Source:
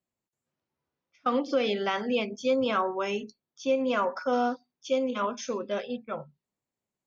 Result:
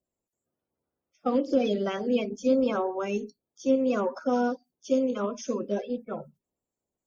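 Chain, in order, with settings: coarse spectral quantiser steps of 30 dB; graphic EQ 125/1000/2000/4000 Hz -4/-8/-10/-10 dB; trim +5 dB

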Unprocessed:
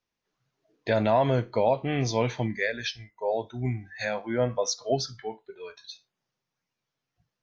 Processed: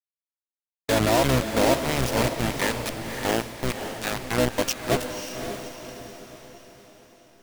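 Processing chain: bit crusher 4-bit; echo that smears into a reverb 557 ms, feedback 46%, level -7 dB; harmony voices -12 st -4 dB

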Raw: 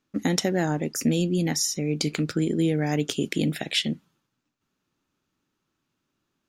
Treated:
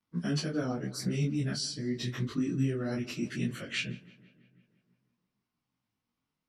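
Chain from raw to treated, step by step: frequency-domain pitch shifter -3.5 st; filtered feedback delay 166 ms, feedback 64%, low-pass 3.4 kHz, level -19.5 dB; detune thickener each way 29 cents; trim -2 dB

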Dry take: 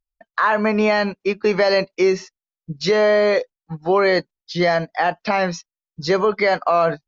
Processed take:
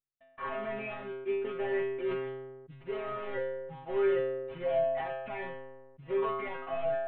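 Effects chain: CVSD coder 16 kbps; bass shelf 77 Hz +6 dB; inharmonic resonator 130 Hz, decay 0.69 s, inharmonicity 0.002; decay stretcher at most 38 dB/s

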